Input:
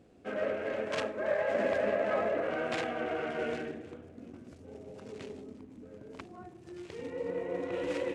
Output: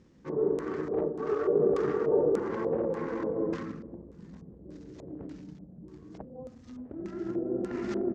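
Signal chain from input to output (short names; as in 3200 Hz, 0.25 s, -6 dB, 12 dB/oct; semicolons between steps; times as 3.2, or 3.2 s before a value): pitch shift -6 st; LFO low-pass square 1.7 Hz 560–7400 Hz; gain +1 dB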